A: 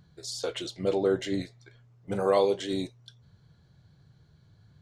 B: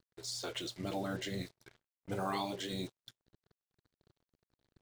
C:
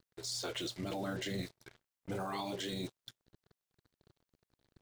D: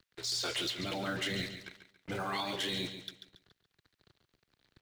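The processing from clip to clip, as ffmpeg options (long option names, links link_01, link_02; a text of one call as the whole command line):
ffmpeg -i in.wav -af "afftfilt=real='re*lt(hypot(re,im),0.224)':imag='im*lt(hypot(re,im),0.224)':win_size=1024:overlap=0.75,acrusher=bits=7:mix=0:aa=0.5,volume=-4dB" out.wav
ffmpeg -i in.wav -af "alimiter=level_in=9dB:limit=-24dB:level=0:latency=1:release=14,volume=-9dB,volume=3dB" out.wav
ffmpeg -i in.wav -filter_complex "[0:a]aecho=1:1:140|280|420|560:0.316|0.111|0.0387|0.0136,acrossover=split=120|1400|4600[link_01][link_02][link_03][link_04];[link_03]aeval=exprs='0.0266*sin(PI/2*2.24*val(0)/0.0266)':channel_layout=same[link_05];[link_01][link_02][link_05][link_04]amix=inputs=4:normalize=0" out.wav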